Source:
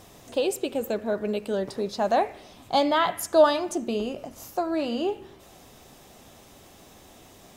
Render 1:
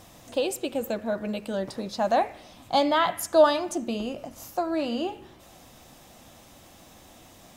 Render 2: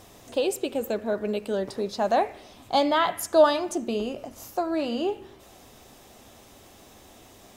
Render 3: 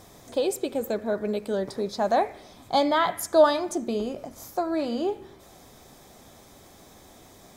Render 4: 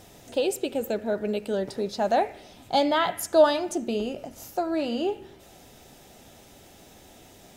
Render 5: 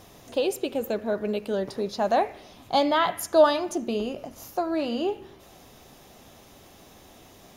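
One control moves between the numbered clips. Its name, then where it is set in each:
notch, frequency: 410, 160, 2800, 1100, 8000 Hz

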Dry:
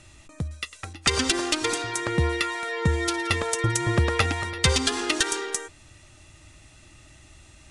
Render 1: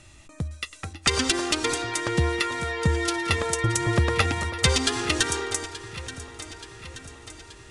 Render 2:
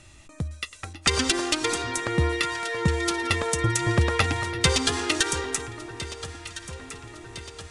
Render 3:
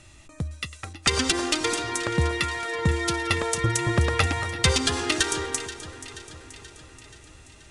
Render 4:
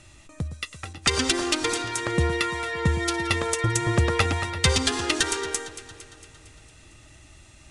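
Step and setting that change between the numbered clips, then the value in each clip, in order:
echo with dull and thin repeats by turns, time: 0.439, 0.679, 0.24, 0.114 s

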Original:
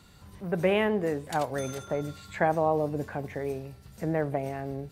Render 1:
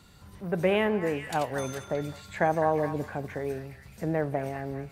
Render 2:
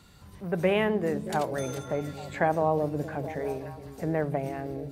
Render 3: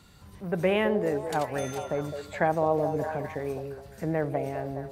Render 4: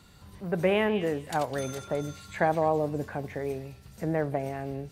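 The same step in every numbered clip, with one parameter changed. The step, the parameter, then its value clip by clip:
delay with a stepping band-pass, band-pass from: 1300, 150, 480, 3500 Hz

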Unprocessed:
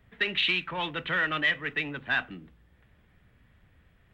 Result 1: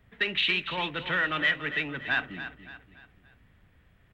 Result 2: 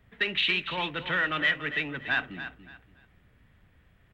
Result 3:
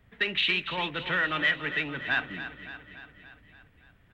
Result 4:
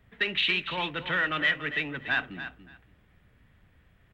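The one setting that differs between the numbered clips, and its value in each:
feedback echo, feedback: 41, 26, 60, 17%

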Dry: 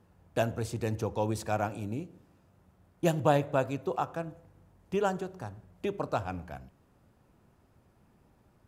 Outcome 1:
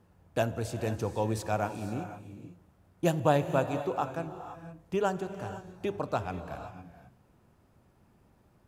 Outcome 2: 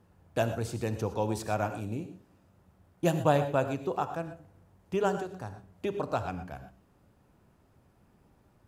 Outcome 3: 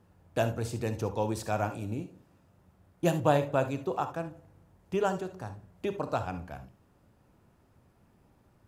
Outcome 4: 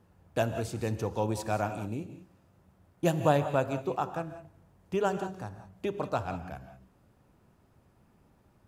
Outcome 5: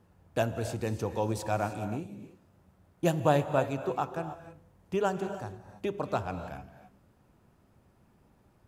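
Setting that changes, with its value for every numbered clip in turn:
non-linear reverb, gate: 530, 140, 90, 210, 330 ms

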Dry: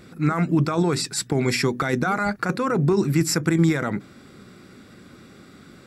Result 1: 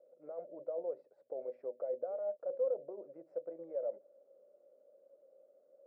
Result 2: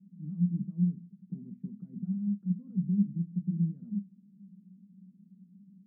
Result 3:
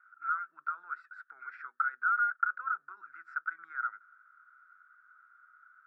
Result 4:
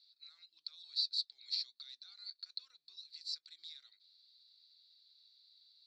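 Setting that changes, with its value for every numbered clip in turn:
Butterworth band-pass, frequency: 560, 190, 1400, 4200 Hz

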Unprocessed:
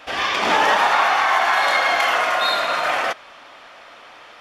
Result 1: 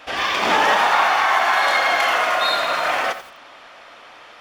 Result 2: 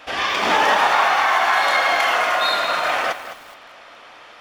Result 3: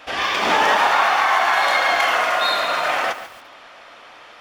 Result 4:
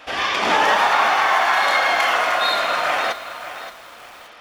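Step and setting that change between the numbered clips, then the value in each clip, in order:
lo-fi delay, time: 87, 210, 140, 574 ms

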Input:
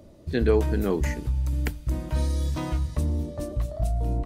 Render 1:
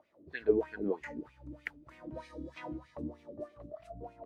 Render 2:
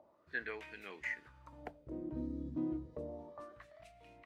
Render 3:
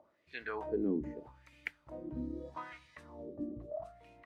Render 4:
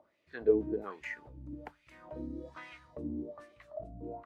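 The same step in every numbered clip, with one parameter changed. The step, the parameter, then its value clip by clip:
wah, rate: 3.2, 0.31, 0.79, 1.2 Hz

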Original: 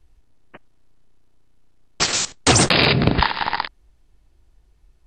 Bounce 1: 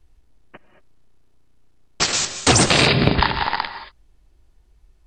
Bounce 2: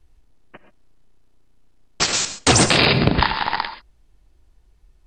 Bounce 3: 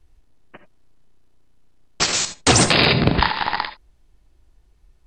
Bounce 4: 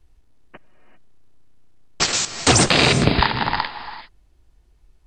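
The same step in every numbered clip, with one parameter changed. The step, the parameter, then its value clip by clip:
non-linear reverb, gate: 0.25, 0.15, 0.1, 0.42 s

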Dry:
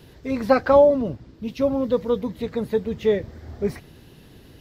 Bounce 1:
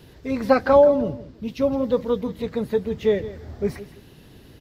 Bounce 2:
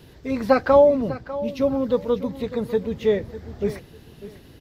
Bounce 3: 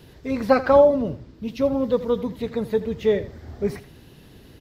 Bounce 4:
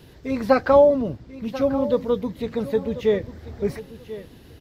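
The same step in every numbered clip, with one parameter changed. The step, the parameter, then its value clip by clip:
feedback echo, time: 164, 598, 82, 1038 ms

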